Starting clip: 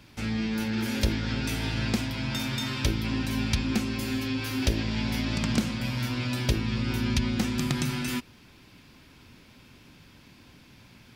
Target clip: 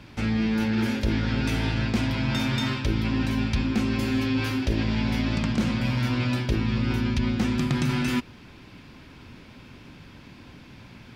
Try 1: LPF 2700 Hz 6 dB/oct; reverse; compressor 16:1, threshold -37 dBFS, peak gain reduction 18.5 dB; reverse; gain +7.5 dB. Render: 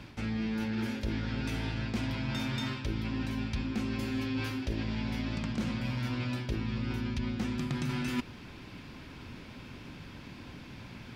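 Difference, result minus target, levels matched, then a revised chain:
compressor: peak gain reduction +9 dB
LPF 2700 Hz 6 dB/oct; reverse; compressor 16:1, threshold -27.5 dBFS, peak gain reduction 9.5 dB; reverse; gain +7.5 dB

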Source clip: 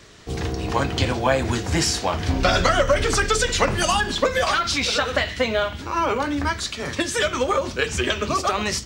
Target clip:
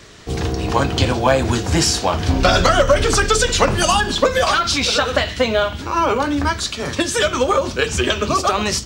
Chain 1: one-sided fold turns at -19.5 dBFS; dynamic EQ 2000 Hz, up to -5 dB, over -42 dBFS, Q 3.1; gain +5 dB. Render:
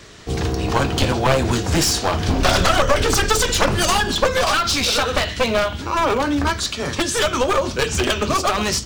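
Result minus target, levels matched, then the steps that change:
one-sided fold: distortion +27 dB
change: one-sided fold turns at -8.5 dBFS

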